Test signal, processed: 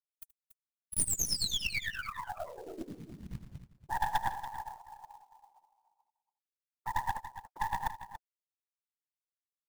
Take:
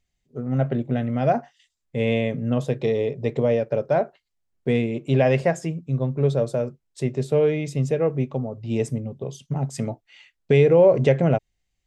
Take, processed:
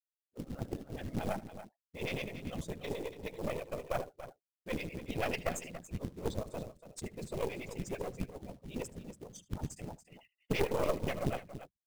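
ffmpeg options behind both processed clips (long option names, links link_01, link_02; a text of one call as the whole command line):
ffmpeg -i in.wav -filter_complex "[0:a]aemphasis=mode=production:type=75kf,bandreject=frequency=50:width_type=h:width=6,bandreject=frequency=100:width_type=h:width=6,bandreject=frequency=150:width_type=h:width=6,afftfilt=real='re*gte(hypot(re,im),0.0141)':imag='im*gte(hypot(re,im),0.0141)':win_size=1024:overlap=0.75,adynamicequalizer=threshold=0.00891:dfrequency=2500:dqfactor=2:tfrequency=2500:tqfactor=2:attack=5:release=100:ratio=0.375:range=2:mode=boostabove:tftype=bell,flanger=delay=2.2:depth=6.9:regen=37:speed=1.3:shape=triangular,afftfilt=real='hypot(re,im)*cos(2*PI*random(0))':imag='hypot(re,im)*sin(2*PI*random(1))':win_size=512:overlap=0.75,acrossover=split=480[link_01][link_02];[link_01]aeval=exprs='val(0)*(1-1/2+1/2*cos(2*PI*9.2*n/s))':channel_layout=same[link_03];[link_02]aeval=exprs='val(0)*(1-1/2-1/2*cos(2*PI*9.2*n/s))':channel_layout=same[link_04];[link_03][link_04]amix=inputs=2:normalize=0,aeval=exprs='0.188*(cos(1*acos(clip(val(0)/0.188,-1,1)))-cos(1*PI/2))+0.00299*(cos(3*acos(clip(val(0)/0.188,-1,1)))-cos(3*PI/2))+0.0075*(cos(5*acos(clip(val(0)/0.188,-1,1)))-cos(5*PI/2))+0.0335*(cos(6*acos(clip(val(0)/0.188,-1,1)))-cos(6*PI/2))':channel_layout=same,acrusher=bits=4:mode=log:mix=0:aa=0.000001,asplit=2[link_05][link_06];[link_06]aecho=0:1:76|284:0.106|0.237[link_07];[link_05][link_07]amix=inputs=2:normalize=0,volume=-4dB" out.wav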